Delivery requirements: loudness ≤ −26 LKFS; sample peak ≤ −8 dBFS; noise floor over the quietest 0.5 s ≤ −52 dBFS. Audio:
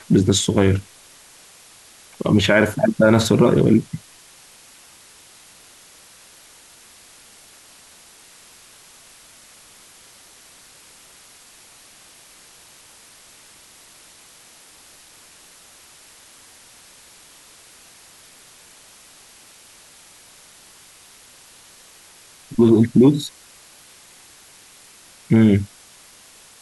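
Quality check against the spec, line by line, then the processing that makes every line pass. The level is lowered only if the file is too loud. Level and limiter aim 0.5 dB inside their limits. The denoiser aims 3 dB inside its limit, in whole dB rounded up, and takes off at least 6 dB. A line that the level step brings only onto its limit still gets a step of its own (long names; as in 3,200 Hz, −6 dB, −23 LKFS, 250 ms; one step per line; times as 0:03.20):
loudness −17.0 LKFS: out of spec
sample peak −4.0 dBFS: out of spec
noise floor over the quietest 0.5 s −48 dBFS: out of spec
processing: level −9.5 dB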